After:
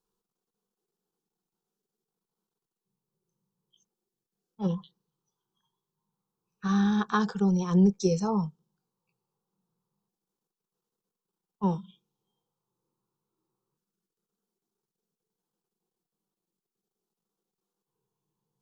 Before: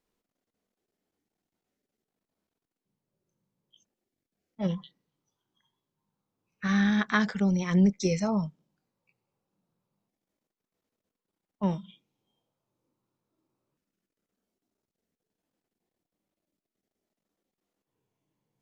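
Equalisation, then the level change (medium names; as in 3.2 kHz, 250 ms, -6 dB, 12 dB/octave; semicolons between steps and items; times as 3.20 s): dynamic bell 610 Hz, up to +6 dB, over -39 dBFS, Q 0.71; static phaser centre 410 Hz, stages 8; 0.0 dB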